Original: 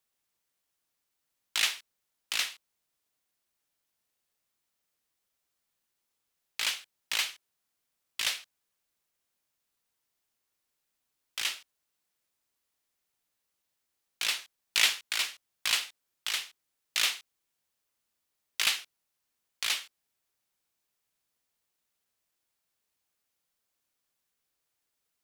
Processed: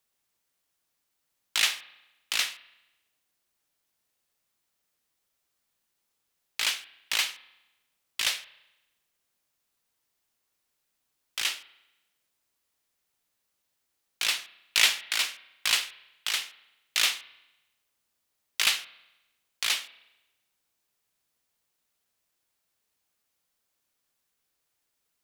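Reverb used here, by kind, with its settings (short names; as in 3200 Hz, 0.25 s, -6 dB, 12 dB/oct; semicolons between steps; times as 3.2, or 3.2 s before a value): spring tank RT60 1 s, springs 33 ms, chirp 35 ms, DRR 16 dB; gain +3 dB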